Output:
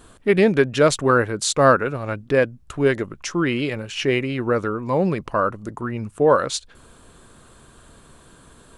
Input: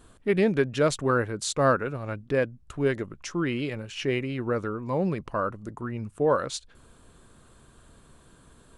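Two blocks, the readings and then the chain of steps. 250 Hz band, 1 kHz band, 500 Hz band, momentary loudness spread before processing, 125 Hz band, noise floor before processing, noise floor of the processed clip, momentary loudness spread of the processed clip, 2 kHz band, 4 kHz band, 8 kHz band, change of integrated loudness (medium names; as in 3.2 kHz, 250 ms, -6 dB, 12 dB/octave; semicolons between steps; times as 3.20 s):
+6.0 dB, +8.0 dB, +7.0 dB, 11 LU, +5.0 dB, -56 dBFS, -51 dBFS, 10 LU, +8.0 dB, +8.0 dB, +8.0 dB, +7.0 dB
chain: bass shelf 260 Hz -4 dB; trim +8 dB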